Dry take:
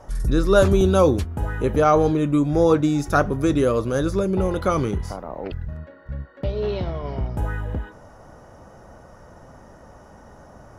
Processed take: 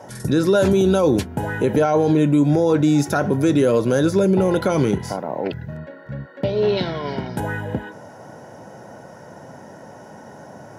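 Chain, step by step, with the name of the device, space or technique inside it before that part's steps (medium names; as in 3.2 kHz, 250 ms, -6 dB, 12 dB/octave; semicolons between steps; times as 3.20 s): PA system with an anti-feedback notch (high-pass 120 Hz 24 dB/octave; Butterworth band-stop 1.2 kHz, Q 5.7; peak limiter -15.5 dBFS, peak gain reduction 10.5 dB); 6.77–7.40 s: fifteen-band graphic EQ 100 Hz -9 dB, 630 Hz -5 dB, 1.6 kHz +6 dB, 4 kHz +9 dB, 10 kHz +6 dB; trim +7 dB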